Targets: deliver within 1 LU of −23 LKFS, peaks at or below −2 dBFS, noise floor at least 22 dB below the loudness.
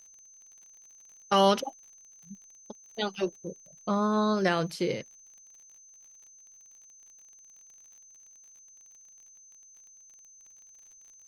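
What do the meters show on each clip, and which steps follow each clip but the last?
crackle rate 35 per second; interfering tone 6,200 Hz; level of the tone −52 dBFS; integrated loudness −28.5 LKFS; sample peak −10.0 dBFS; target loudness −23.0 LKFS
→ click removal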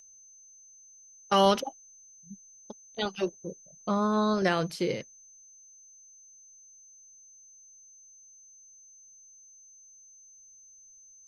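crackle rate 0.089 per second; interfering tone 6,200 Hz; level of the tone −52 dBFS
→ notch filter 6,200 Hz, Q 30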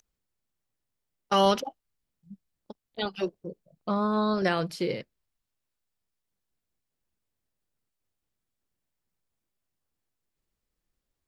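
interfering tone none found; integrated loudness −28.0 LKFS; sample peak −10.5 dBFS; target loudness −23.0 LKFS
→ level +5 dB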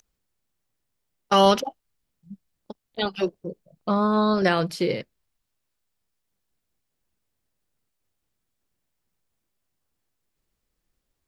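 integrated loudness −23.0 LKFS; sample peak −5.5 dBFS; background noise floor −79 dBFS

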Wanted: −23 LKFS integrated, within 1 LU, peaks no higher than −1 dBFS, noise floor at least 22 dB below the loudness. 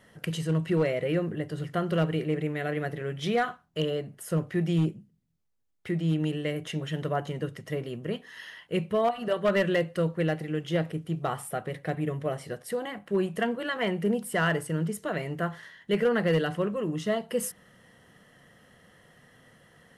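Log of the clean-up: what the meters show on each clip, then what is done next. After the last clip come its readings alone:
share of clipped samples 0.3%; peaks flattened at −18.0 dBFS; integrated loudness −29.5 LKFS; sample peak −18.0 dBFS; target loudness −23.0 LKFS
→ clipped peaks rebuilt −18 dBFS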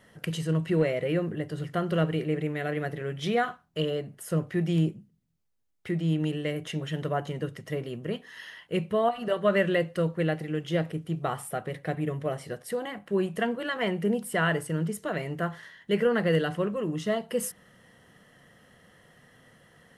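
share of clipped samples 0.0%; integrated loudness −29.5 LKFS; sample peak −12.0 dBFS; target loudness −23.0 LKFS
→ level +6.5 dB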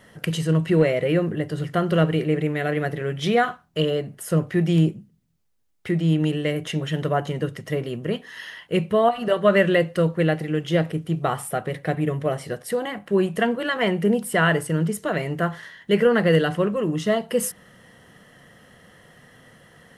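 integrated loudness −23.0 LKFS; sample peak −5.5 dBFS; background noise floor −56 dBFS

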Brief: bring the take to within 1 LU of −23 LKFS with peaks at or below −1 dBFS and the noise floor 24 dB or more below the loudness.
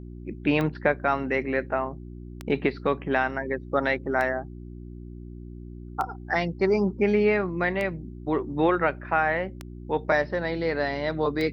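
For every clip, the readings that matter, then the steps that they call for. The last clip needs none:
number of clicks 7; mains hum 60 Hz; hum harmonics up to 360 Hz; level of the hum −37 dBFS; integrated loudness −26.0 LKFS; sample peak −9.0 dBFS; target loudness −23.0 LKFS
→ click removal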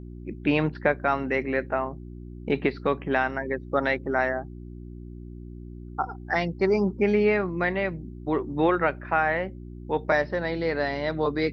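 number of clicks 0; mains hum 60 Hz; hum harmonics up to 360 Hz; level of the hum −37 dBFS
→ hum removal 60 Hz, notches 6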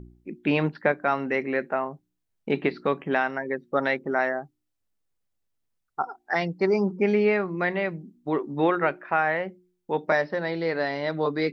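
mains hum none found; integrated loudness −26.0 LKFS; sample peak −9.0 dBFS; target loudness −23.0 LKFS
→ level +3 dB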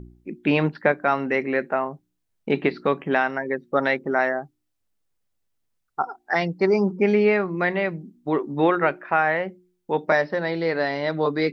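integrated loudness −23.0 LKFS; sample peak −6.0 dBFS; background noise floor −75 dBFS

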